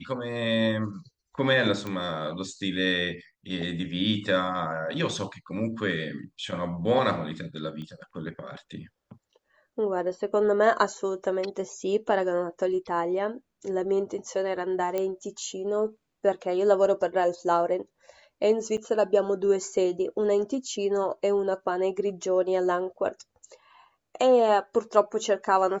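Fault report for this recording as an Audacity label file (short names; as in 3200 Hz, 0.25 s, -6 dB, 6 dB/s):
1.870000	1.870000	pop -20 dBFS
7.820000	7.820000	pop -29 dBFS
14.980000	14.980000	pop -16 dBFS
18.770000	18.780000	gap 7.1 ms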